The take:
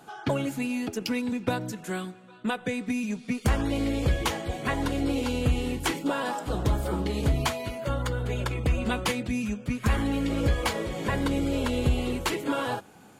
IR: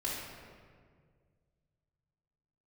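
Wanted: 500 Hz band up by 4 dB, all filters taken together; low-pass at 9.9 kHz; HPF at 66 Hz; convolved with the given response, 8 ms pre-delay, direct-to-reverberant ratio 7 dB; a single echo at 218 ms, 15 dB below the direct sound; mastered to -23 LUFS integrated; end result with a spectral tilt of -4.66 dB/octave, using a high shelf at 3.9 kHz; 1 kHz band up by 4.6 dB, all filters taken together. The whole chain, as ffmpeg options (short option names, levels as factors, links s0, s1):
-filter_complex "[0:a]highpass=66,lowpass=9900,equalizer=f=500:t=o:g=3.5,equalizer=f=1000:t=o:g=4,highshelf=f=3900:g=9,aecho=1:1:218:0.178,asplit=2[s0][s1];[1:a]atrim=start_sample=2205,adelay=8[s2];[s1][s2]afir=irnorm=-1:irlink=0,volume=0.282[s3];[s0][s3]amix=inputs=2:normalize=0,volume=1.33"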